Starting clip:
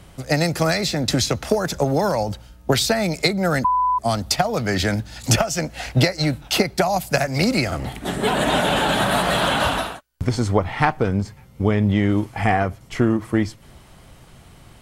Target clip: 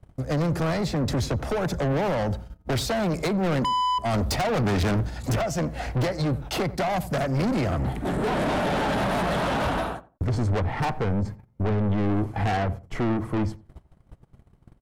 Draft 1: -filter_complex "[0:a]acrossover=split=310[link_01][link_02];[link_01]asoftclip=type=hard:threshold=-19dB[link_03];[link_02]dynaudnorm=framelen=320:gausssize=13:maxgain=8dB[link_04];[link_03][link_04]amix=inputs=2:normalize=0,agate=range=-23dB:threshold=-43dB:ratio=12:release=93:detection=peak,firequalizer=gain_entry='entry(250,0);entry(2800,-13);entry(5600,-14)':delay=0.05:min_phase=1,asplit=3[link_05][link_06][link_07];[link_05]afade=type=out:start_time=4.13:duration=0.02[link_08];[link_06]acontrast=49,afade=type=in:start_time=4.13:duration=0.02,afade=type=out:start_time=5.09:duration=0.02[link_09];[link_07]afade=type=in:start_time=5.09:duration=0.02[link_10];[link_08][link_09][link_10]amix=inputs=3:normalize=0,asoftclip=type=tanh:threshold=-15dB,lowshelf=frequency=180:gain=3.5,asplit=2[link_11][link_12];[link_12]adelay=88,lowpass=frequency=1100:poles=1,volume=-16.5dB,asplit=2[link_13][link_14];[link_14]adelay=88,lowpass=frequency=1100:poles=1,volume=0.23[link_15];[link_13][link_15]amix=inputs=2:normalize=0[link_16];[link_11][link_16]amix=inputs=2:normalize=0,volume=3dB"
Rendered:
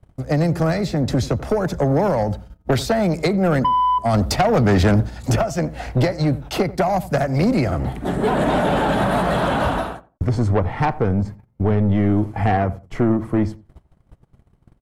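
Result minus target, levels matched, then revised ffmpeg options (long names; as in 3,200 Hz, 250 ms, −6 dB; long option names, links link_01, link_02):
soft clipping: distortion −8 dB
-filter_complex "[0:a]acrossover=split=310[link_01][link_02];[link_01]asoftclip=type=hard:threshold=-19dB[link_03];[link_02]dynaudnorm=framelen=320:gausssize=13:maxgain=8dB[link_04];[link_03][link_04]amix=inputs=2:normalize=0,agate=range=-23dB:threshold=-43dB:ratio=12:release=93:detection=peak,firequalizer=gain_entry='entry(250,0);entry(2800,-13);entry(5600,-14)':delay=0.05:min_phase=1,asplit=3[link_05][link_06][link_07];[link_05]afade=type=out:start_time=4.13:duration=0.02[link_08];[link_06]acontrast=49,afade=type=in:start_time=4.13:duration=0.02,afade=type=out:start_time=5.09:duration=0.02[link_09];[link_07]afade=type=in:start_time=5.09:duration=0.02[link_10];[link_08][link_09][link_10]amix=inputs=3:normalize=0,asoftclip=type=tanh:threshold=-26dB,lowshelf=frequency=180:gain=3.5,asplit=2[link_11][link_12];[link_12]adelay=88,lowpass=frequency=1100:poles=1,volume=-16.5dB,asplit=2[link_13][link_14];[link_14]adelay=88,lowpass=frequency=1100:poles=1,volume=0.23[link_15];[link_13][link_15]amix=inputs=2:normalize=0[link_16];[link_11][link_16]amix=inputs=2:normalize=0,volume=3dB"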